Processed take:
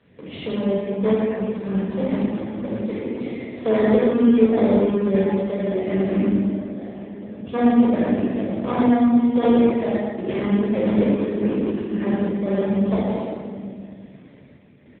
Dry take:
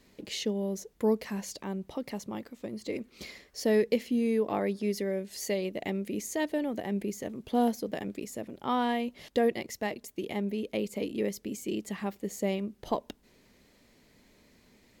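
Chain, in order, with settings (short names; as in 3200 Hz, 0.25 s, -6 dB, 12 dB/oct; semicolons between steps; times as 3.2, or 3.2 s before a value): treble ducked by the level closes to 1000 Hz, closed at -26 dBFS; in parallel at -5 dB: sample-and-hold 31×; on the sum: added harmonics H 2 -16 dB, 5 -20 dB, 8 -38 dB, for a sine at -12 dBFS; 6.34–7.47 level quantiser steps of 21 dB; shoebox room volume 3100 m³, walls mixed, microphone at 5.6 m; random-step tremolo; echo 0.118 s -7 dB; AMR-NB 7.95 kbps 8000 Hz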